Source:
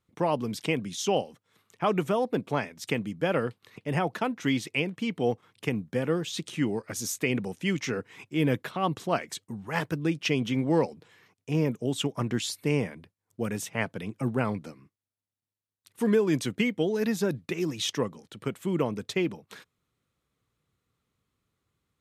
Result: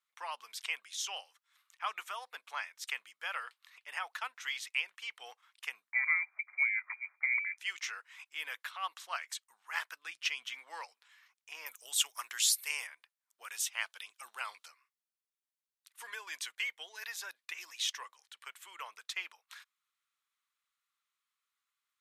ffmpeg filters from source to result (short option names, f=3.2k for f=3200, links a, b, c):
-filter_complex "[0:a]asettb=1/sr,asplit=3[a][b][c];[a]atrim=end=5.924[d];[b]atrim=start=5.92:end=7.58,asetpts=PTS-STARTPTS,afade=t=in:d=0.004:c=qsin,afade=t=out:st=1.656:d=0.004:c=qsin,lowpass=f=2.1k:t=q:w=0.5098,lowpass=f=2.1k:t=q:w=0.6013,lowpass=f=2.1k:t=q:w=0.9,lowpass=f=2.1k:t=q:w=2.563,afreqshift=-2500[e];[c]atrim=start=7.576[f];[d][e]acrossfade=d=0.004:c1=hsin:c2=qsin[g];[g][f]acrossfade=d=0.004:c1=qsin:c2=hsin,asplit=3[h][i][j];[h]afade=t=out:st=10.06:d=0.02[k];[i]asubboost=boost=9:cutoff=140,afade=t=in:st=10.06:d=0.02,afade=t=out:st=10.59:d=0.02[l];[j]afade=t=in:st=10.59:d=0.02[m];[k][l][m]amix=inputs=3:normalize=0,asettb=1/sr,asplit=3[n][o][p];[n]atrim=end=11.664[q];[o]atrim=start=11.66:end=12.87,asetpts=PTS-STARTPTS,afade=t=in:d=0.004:c=qsin,afade=t=out:st=1.206:d=0.004:c=qsin,aemphasis=mode=production:type=75kf[r];[p]atrim=start=12.866[s];[q][r]acrossfade=d=0.004:c1=hsin:c2=qsin[t];[t][s]acrossfade=d=0.004:c1=qsin:c2=hsin,asettb=1/sr,asplit=3[u][v][w];[u]atrim=end=13.484[x];[v]atrim=start=13.48:end=14.68,asetpts=PTS-STARTPTS,afade=t=in:d=0.004:c=qsin,afade=t=out:st=1.196:d=0.004:c=qsin,highshelf=f=2.6k:t=q:w=1.5:g=6[y];[w]atrim=start=14.676[z];[x][y]acrossfade=d=0.004:c1=hsin:c2=qsin[aa];[aa][z]acrossfade=d=0.004:c1=qsin:c2=hsin,asettb=1/sr,asplit=3[ab][ac][ad];[ab]atrim=end=16.024[ae];[ac]atrim=start=16.02:end=18.61,asetpts=PTS-STARTPTS,afade=t=in:d=0.004:c=qsin,afade=t=out:st=2.586:d=0.004:c=qsin,bandreject=f=1.3k:w=10[af];[ad]atrim=start=18.606[ag];[ae][af]acrossfade=d=0.004:c1=hsin:c2=qsin[ah];[ah][ag]acrossfade=d=0.004:c1=qsin:c2=hsin,highpass=f=1.1k:w=0.5412,highpass=f=1.1k:w=1.3066,volume=-3.5dB"